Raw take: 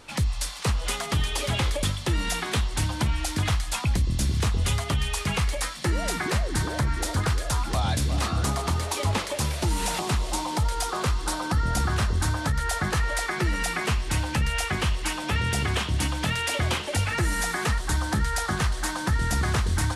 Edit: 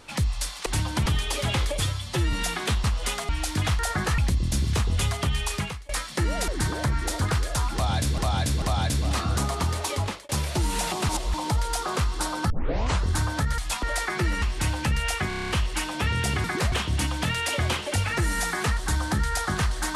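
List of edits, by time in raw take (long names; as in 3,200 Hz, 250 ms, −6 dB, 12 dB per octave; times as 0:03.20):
0:00.66–0:01.11: swap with 0:02.70–0:03.10
0:01.81–0:02.19: time-stretch 1.5×
0:03.60–0:03.85: swap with 0:12.65–0:13.04
0:05.25–0:05.56: fade out quadratic, to −22.5 dB
0:06.15–0:06.43: move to 0:15.73
0:07.69–0:08.13: repeat, 3 plays
0:08.86–0:09.36: fade out equal-power
0:10.16–0:10.41: reverse
0:11.57: tape start 0.54 s
0:13.63–0:13.92: remove
0:14.78: stutter 0.03 s, 8 plays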